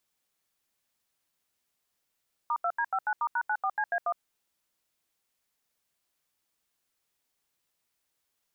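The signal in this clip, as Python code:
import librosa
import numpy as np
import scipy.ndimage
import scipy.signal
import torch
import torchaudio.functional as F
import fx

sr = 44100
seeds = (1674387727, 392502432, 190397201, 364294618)

y = fx.dtmf(sr, digits='*2D59*#94CA1', tone_ms=62, gap_ms=80, level_db=-28.0)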